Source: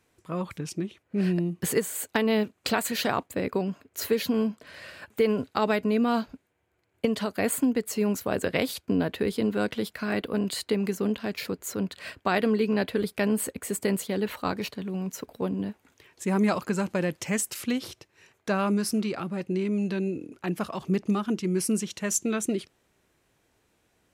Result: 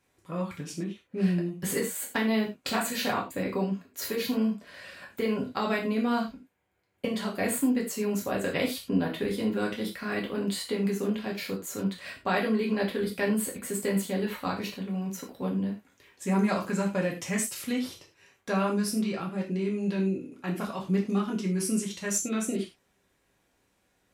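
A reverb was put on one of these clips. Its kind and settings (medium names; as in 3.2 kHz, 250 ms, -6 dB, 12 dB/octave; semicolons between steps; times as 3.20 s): gated-style reverb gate 130 ms falling, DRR -2 dB; trim -5.5 dB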